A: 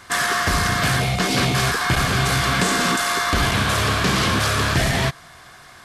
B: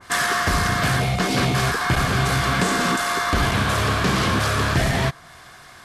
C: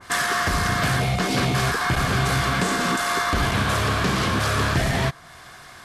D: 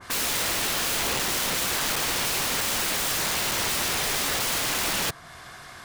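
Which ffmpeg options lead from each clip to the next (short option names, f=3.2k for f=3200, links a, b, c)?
-af "adynamicequalizer=threshold=0.0158:dfrequency=1900:dqfactor=0.7:tfrequency=1900:tqfactor=0.7:attack=5:release=100:ratio=0.375:range=2:mode=cutabove:tftype=highshelf"
-af "alimiter=limit=-13dB:level=0:latency=1:release=440,volume=1dB"
-af "aeval=exprs='(mod(11.9*val(0)+1,2)-1)/11.9':c=same"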